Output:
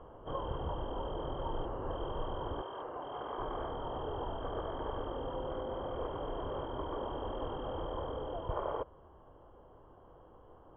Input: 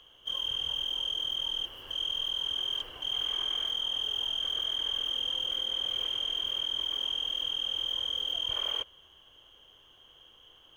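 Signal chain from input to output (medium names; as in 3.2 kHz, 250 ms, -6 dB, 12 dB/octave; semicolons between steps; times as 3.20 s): low-pass 1 kHz 24 dB/octave; gain riding within 3 dB 0.5 s; 2.61–3.38 s: high-pass 780 Hz -> 310 Hz 6 dB/octave; trim +13.5 dB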